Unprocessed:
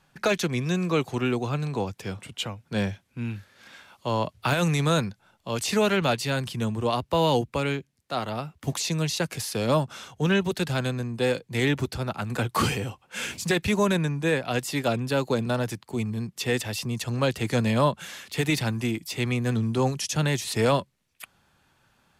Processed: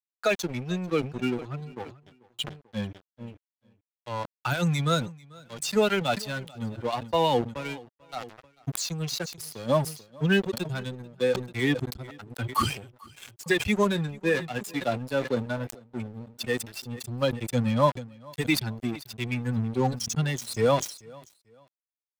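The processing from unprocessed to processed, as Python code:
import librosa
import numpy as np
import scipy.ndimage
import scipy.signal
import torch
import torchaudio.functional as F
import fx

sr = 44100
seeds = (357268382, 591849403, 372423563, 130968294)

y = fx.bin_expand(x, sr, power=2.0)
y = fx.doubler(y, sr, ms=24.0, db=-14.0, at=(13.88, 15.89))
y = np.sign(y) * np.maximum(np.abs(y) - 10.0 ** (-41.0 / 20.0), 0.0)
y = fx.low_shelf(y, sr, hz=140.0, db=-4.5)
y = fx.echo_feedback(y, sr, ms=441, feedback_pct=29, wet_db=-24.0)
y = fx.sustainer(y, sr, db_per_s=120.0)
y = y * librosa.db_to_amplitude(5.0)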